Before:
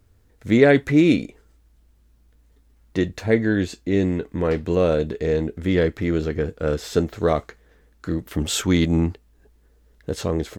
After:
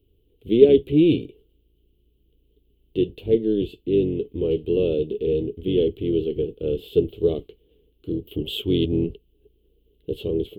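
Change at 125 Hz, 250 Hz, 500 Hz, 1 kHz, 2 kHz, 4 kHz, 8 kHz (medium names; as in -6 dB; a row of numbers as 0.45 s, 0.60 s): -5.0 dB, -2.0 dB, +1.0 dB, under -15 dB, -16.5 dB, -2.0 dB, under -20 dB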